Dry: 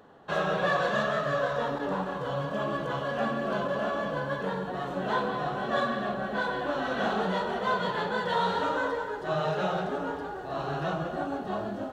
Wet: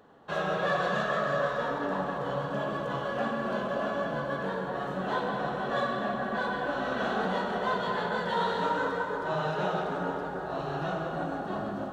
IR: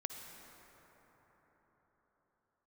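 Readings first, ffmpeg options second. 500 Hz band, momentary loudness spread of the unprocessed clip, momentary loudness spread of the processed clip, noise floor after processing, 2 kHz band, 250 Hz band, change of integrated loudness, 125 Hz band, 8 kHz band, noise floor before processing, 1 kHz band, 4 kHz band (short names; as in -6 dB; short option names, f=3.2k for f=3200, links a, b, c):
-1.0 dB, 6 LU, 5 LU, -36 dBFS, -0.5 dB, -1.0 dB, -1.0 dB, -1.5 dB, n/a, -37 dBFS, -0.5 dB, -2.0 dB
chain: -filter_complex "[1:a]atrim=start_sample=2205[a];[0:a][a]afir=irnorm=-1:irlink=0"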